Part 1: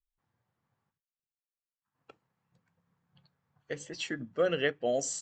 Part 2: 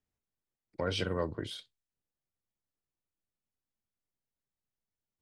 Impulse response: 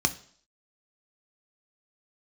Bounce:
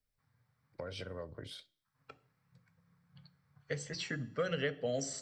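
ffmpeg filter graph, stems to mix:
-filter_complex "[0:a]volume=2.5dB,asplit=2[a][b];[b]volume=-15dB[c];[1:a]equalizer=f=580:w=2.5:g=7,acompressor=threshold=-35dB:ratio=6,volume=-4dB,asplit=2[d][e];[e]volume=-21.5dB[f];[2:a]atrim=start_sample=2205[g];[c][f]amix=inputs=2:normalize=0[h];[h][g]afir=irnorm=-1:irlink=0[i];[a][d][i]amix=inputs=3:normalize=0,acrossover=split=440|1300|3100[j][k][l][m];[j]acompressor=threshold=-37dB:ratio=4[n];[k]acompressor=threshold=-38dB:ratio=4[o];[l]acompressor=threshold=-47dB:ratio=4[p];[m]acompressor=threshold=-43dB:ratio=4[q];[n][o][p][q]amix=inputs=4:normalize=0"

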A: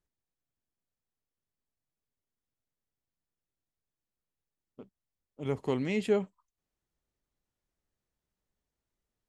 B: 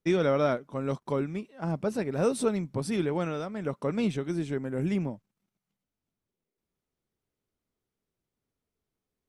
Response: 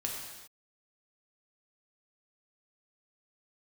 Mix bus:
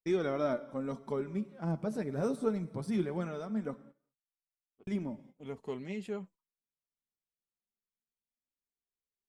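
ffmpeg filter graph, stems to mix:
-filter_complex "[0:a]volume=-5.5dB[a];[1:a]bandreject=f=2.7k:w=11,deesser=0.95,equalizer=f=220:w=7:g=9,volume=-4dB,asplit=3[b][c][d];[b]atrim=end=3.76,asetpts=PTS-STARTPTS,afade=t=out:st=3.756:d=0.004:c=hsin[e];[c]atrim=start=3.76:end=4.87,asetpts=PTS-STARTPTS,volume=0[f];[d]atrim=start=4.87,asetpts=PTS-STARTPTS,afade=t=in:d=0.004:c=hsin[g];[e][f][g]concat=n=3:v=0:a=1,asplit=2[h][i];[i]volume=-14.5dB[j];[2:a]atrim=start_sample=2205[k];[j][k]afir=irnorm=-1:irlink=0[l];[a][h][l]amix=inputs=3:normalize=0,agate=range=-16dB:threshold=-51dB:ratio=16:detection=peak,adynamicequalizer=threshold=0.002:dfrequency=3000:dqfactor=0.99:tfrequency=3000:tqfactor=0.99:attack=5:release=100:ratio=0.375:range=2.5:mode=cutabove:tftype=bell,flanger=delay=2.1:depth=5.1:regen=38:speed=0.22:shape=triangular"

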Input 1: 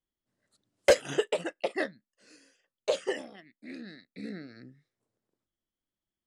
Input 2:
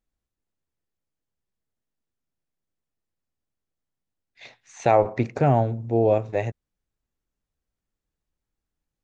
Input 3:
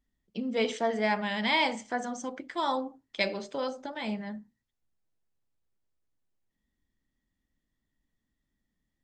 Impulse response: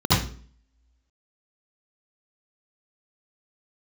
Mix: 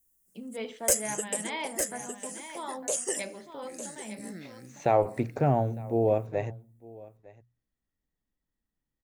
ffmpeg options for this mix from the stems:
-filter_complex "[0:a]lowshelf=f=160:g=9.5,aexciter=amount=13.4:drive=9:freq=6.3k,volume=-3dB,asplit=2[a][b];[b]volume=-14.5dB[c];[1:a]equalizer=f=3.6k:w=0.43:g=-4,bandreject=f=60:t=h:w=6,bandreject=f=120:t=h:w=6,volume=-4.5dB,asplit=2[d][e];[e]volume=-22dB[f];[2:a]equalizer=f=6.8k:t=o:w=1.3:g=-8.5,volume=-8.5dB,asplit=3[g][h][i];[h]volume=-10.5dB[j];[i]apad=whole_len=276374[k];[a][k]sidechaincompress=threshold=-39dB:ratio=4:attack=7:release=807[l];[c][f][j]amix=inputs=3:normalize=0,aecho=0:1:906:1[m];[l][d][g][m]amix=inputs=4:normalize=0"

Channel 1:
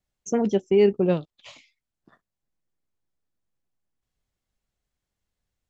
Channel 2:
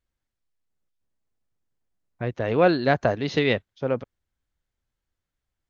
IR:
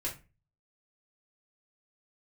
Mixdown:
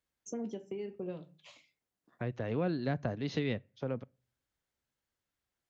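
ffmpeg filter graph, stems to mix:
-filter_complex "[0:a]acompressor=threshold=-20dB:ratio=6,volume=-12.5dB,asplit=2[a][b];[b]volume=-7.5dB[c];[1:a]volume=-2dB,asplit=2[d][e];[e]volume=-24dB[f];[2:a]atrim=start_sample=2205[g];[c][f]amix=inputs=2:normalize=0[h];[h][g]afir=irnorm=-1:irlink=0[i];[a][d][i]amix=inputs=3:normalize=0,highpass=f=180:p=1,acrossover=split=240[j][k];[k]acompressor=threshold=-41dB:ratio=3[l];[j][l]amix=inputs=2:normalize=0"

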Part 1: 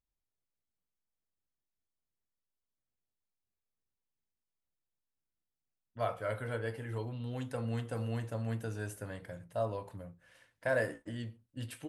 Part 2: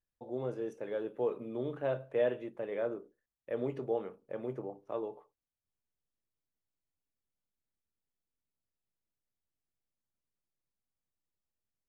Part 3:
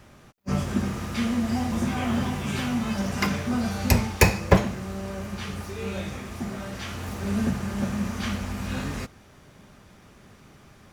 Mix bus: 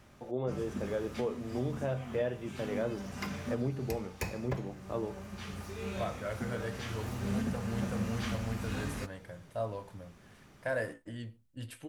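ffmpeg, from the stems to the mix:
-filter_complex "[0:a]volume=-1.5dB[a];[1:a]asubboost=boost=6:cutoff=190,volume=3dB,asplit=2[b][c];[2:a]volume=-7dB[d];[c]apad=whole_len=482012[e];[d][e]sidechaincompress=threshold=-37dB:ratio=4:attack=23:release=1090[f];[a][b][f]amix=inputs=3:normalize=0,alimiter=limit=-23dB:level=0:latency=1:release=414"

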